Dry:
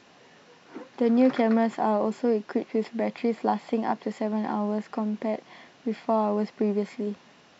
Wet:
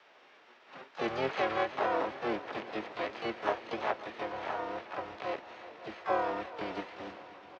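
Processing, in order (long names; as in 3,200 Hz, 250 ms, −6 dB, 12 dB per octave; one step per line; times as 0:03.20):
spectral envelope flattened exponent 0.6
echo with shifted repeats 427 ms, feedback 39%, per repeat −80 Hz, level −19.5 dB
single-sideband voice off tune −120 Hz 510–2,900 Hz
on a send: echo machine with several playback heads 179 ms, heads second and third, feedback 75%, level −18.5 dB
on the sum: pitch-shifted copies added −7 semitones −7 dB, +5 semitones −3 dB, +12 semitones −9 dB
level −5 dB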